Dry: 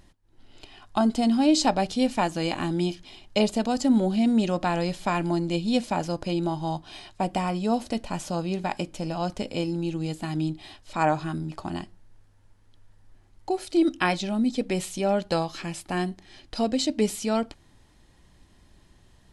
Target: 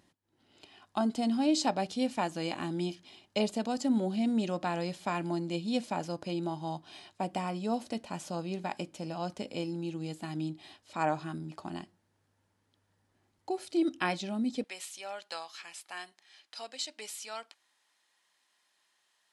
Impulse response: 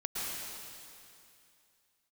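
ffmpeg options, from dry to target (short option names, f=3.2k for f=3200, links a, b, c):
-af "asetnsamples=n=441:p=0,asendcmd='14.64 highpass f 1100',highpass=140,volume=-7dB"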